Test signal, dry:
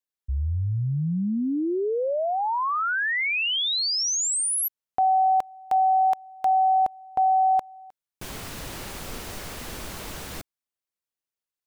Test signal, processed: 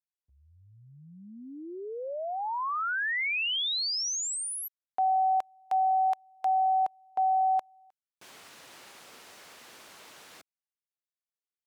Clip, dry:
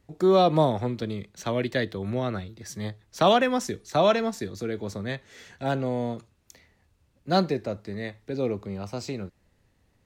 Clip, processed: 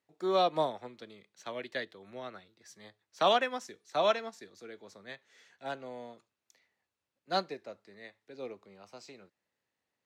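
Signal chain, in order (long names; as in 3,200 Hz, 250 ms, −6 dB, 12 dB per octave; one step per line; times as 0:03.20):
meter weighting curve A
expander for the loud parts 1.5 to 1, over −37 dBFS
level −4 dB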